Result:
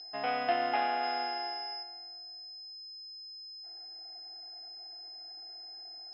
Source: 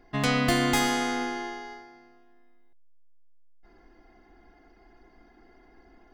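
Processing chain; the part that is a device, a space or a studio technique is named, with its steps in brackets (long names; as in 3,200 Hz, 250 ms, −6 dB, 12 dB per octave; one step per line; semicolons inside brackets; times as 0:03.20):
toy sound module (linearly interpolated sample-rate reduction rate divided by 6×; switching amplifier with a slow clock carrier 5,100 Hz; loudspeaker in its box 620–4,200 Hz, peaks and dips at 740 Hz +10 dB, 1,100 Hz −9 dB, 2,000 Hz −3 dB, 2,900 Hz +6 dB)
0:01.03–0:01.83: high-shelf EQ 3,900 Hz +9 dB
level −3.5 dB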